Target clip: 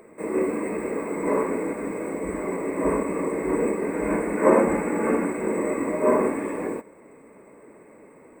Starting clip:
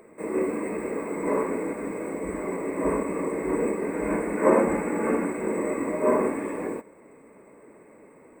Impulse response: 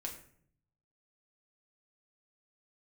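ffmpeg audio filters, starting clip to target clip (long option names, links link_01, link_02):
-af "volume=2dB"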